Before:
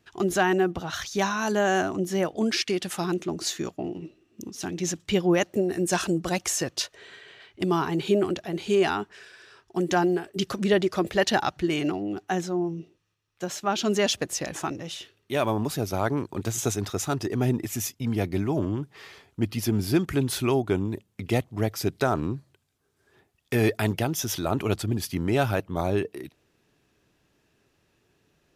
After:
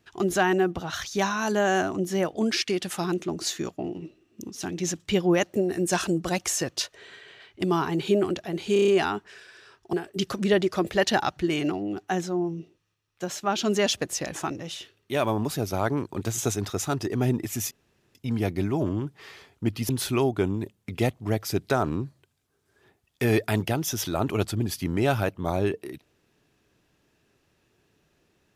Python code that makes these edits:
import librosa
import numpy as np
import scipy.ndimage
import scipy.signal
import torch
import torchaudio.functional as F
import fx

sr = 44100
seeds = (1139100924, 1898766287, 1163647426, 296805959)

y = fx.edit(x, sr, fx.stutter(start_s=8.73, slice_s=0.03, count=6),
    fx.cut(start_s=9.78, length_s=0.35),
    fx.insert_room_tone(at_s=17.91, length_s=0.44),
    fx.cut(start_s=19.65, length_s=0.55), tone=tone)